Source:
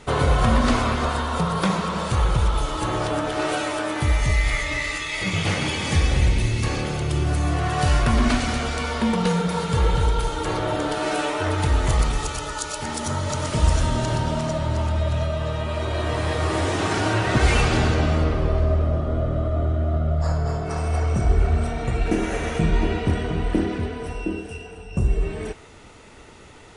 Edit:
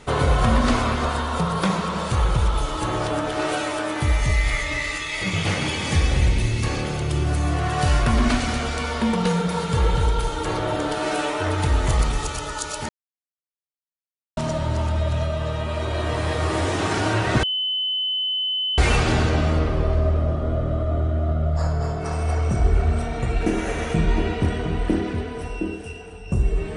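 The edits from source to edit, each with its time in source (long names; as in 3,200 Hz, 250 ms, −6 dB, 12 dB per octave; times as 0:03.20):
0:12.89–0:14.37: silence
0:17.43: insert tone 3,030 Hz −21 dBFS 1.35 s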